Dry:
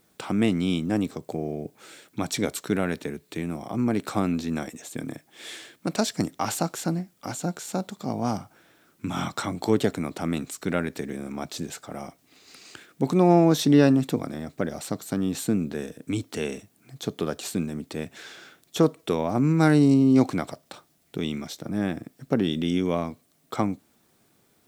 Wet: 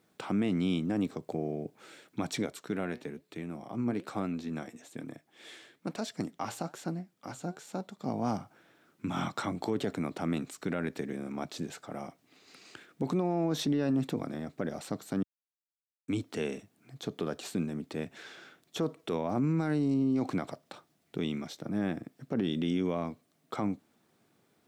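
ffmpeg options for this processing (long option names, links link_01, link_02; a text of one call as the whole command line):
ffmpeg -i in.wav -filter_complex "[0:a]asettb=1/sr,asplit=3[link_01][link_02][link_03];[link_01]atrim=end=2.464[link_04];[link_02]atrim=start=2.46:end=8.04,asetpts=PTS-STARTPTS,afade=type=in:duration=0.004:curve=qsin,afade=type=out:start_time=5.576:duration=0.004:curve=qsin,flanger=delay=1.4:depth=7.2:regen=81:speed=1.1:shape=sinusoidal[link_05];[link_03]atrim=start=8.036[link_06];[link_04][link_05]acrossfade=duration=0.004:curve1=hsin:curve2=qsin[link_07];[link_07][link_06]acrossfade=duration=0.004:curve1=qsin:curve2=hsin,asplit=3[link_08][link_09][link_10];[link_08]atrim=end=15.23,asetpts=PTS-STARTPTS,afade=type=out:start_time=15.226:duration=0.004:curve=hsin[link_11];[link_09]atrim=start=15.23:end=16.08,asetpts=PTS-STARTPTS,volume=0[link_12];[link_10]atrim=start=16.08,asetpts=PTS-STARTPTS,afade=type=in:duration=0.004:curve=hsin[link_13];[link_11][link_12][link_13]concat=n=3:v=0:a=1,highpass=100,highshelf=frequency=5400:gain=-9.5,alimiter=limit=-18dB:level=0:latency=1:release=42,volume=-3.5dB" out.wav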